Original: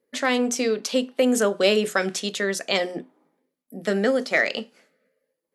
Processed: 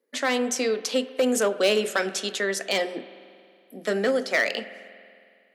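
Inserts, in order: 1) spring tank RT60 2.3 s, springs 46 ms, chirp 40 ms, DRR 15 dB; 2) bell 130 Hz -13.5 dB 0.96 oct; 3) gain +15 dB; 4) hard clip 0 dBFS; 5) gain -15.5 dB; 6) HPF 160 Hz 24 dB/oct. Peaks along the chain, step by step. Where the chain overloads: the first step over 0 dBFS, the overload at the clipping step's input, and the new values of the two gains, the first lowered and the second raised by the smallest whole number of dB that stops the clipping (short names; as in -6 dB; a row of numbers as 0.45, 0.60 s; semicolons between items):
-6.0, -6.5, +8.5, 0.0, -15.5, -11.0 dBFS; step 3, 8.5 dB; step 3 +6 dB, step 5 -6.5 dB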